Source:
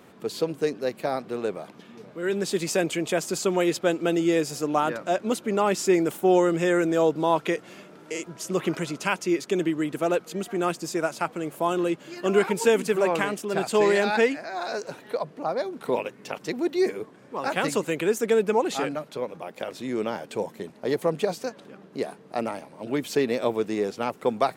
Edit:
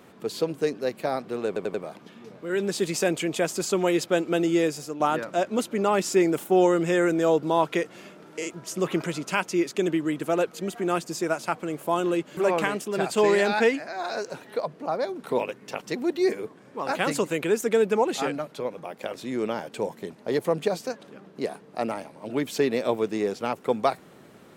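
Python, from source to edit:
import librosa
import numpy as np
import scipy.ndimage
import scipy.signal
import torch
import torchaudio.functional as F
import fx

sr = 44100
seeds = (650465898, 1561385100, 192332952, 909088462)

y = fx.edit(x, sr, fx.stutter(start_s=1.47, slice_s=0.09, count=4),
    fx.fade_out_to(start_s=4.33, length_s=0.4, floor_db=-9.5),
    fx.cut(start_s=12.1, length_s=0.84), tone=tone)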